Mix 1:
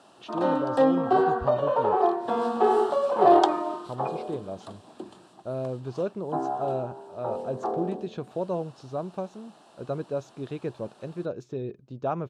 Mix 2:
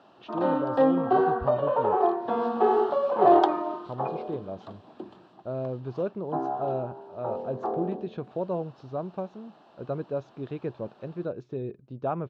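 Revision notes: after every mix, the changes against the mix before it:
master: add distance through air 220 m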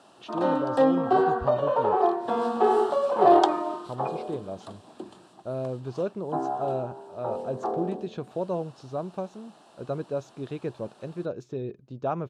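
master: remove distance through air 220 m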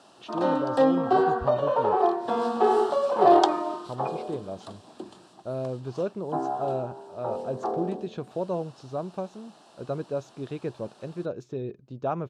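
background: add peaking EQ 5.2 kHz +4.5 dB 0.99 oct

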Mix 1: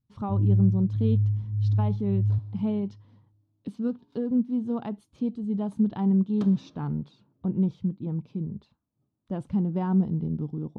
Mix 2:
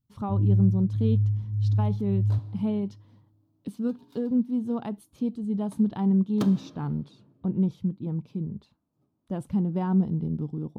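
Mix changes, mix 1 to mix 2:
second sound +7.5 dB; master: remove distance through air 78 m

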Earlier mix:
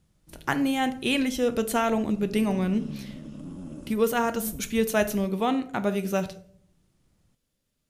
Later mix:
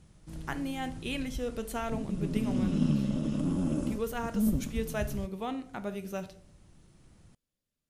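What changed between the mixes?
speech -10.5 dB; background +9.5 dB

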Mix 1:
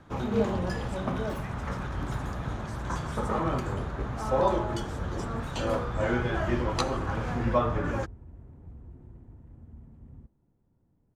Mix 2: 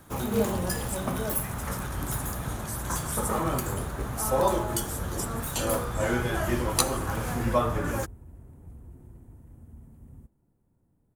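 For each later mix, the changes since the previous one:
master: remove distance through air 160 m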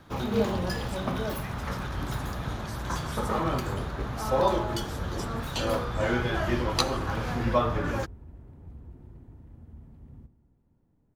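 second sound: send on; master: add resonant high shelf 6.4 kHz -13 dB, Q 1.5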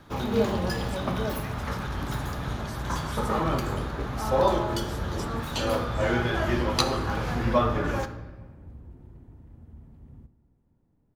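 first sound: send on

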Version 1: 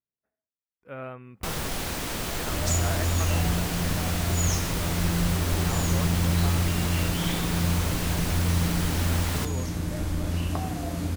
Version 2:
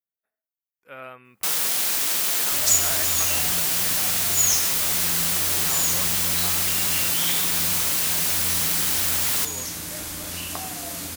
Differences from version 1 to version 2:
first sound: add high-pass 140 Hz; master: add tilt EQ +4 dB/octave

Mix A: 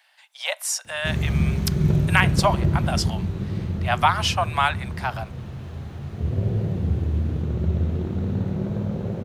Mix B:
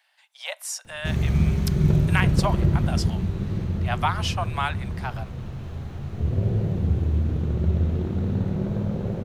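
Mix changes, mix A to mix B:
speech -6.0 dB; master: remove high-pass 54 Hz

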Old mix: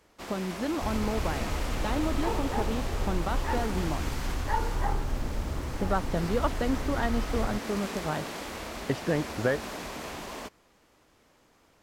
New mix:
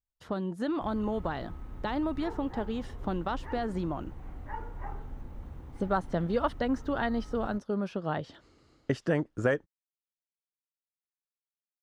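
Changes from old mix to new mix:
first sound: muted; second sound -10.5 dB

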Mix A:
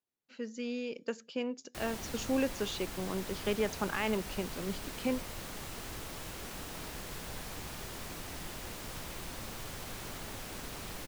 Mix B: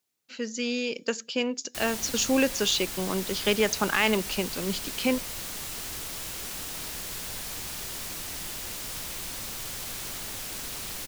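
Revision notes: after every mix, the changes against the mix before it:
speech +6.5 dB; master: add treble shelf 2.4 kHz +12 dB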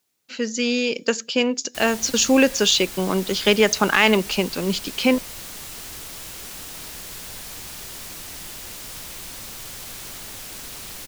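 speech +7.5 dB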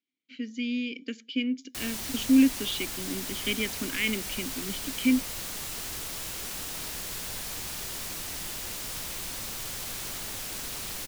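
speech: add vowel filter i

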